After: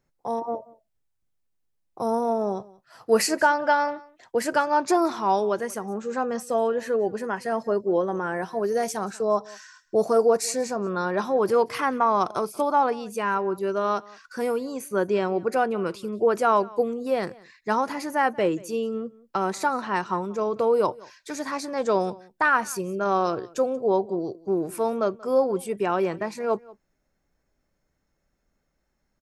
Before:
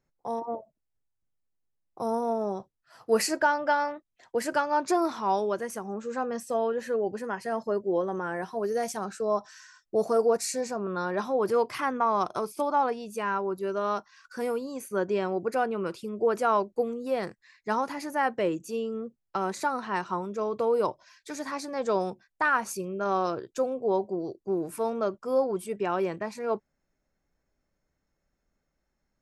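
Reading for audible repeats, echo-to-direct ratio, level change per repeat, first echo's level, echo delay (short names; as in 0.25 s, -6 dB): 1, -22.5 dB, no steady repeat, -22.5 dB, 0.183 s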